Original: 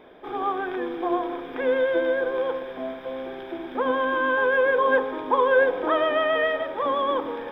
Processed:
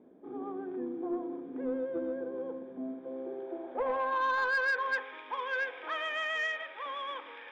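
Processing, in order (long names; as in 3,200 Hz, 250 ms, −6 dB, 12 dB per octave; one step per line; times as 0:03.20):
band-pass filter sweep 240 Hz → 2,400 Hz, 0:02.83–0:05.09
soft clipping −24 dBFS, distortion −17 dB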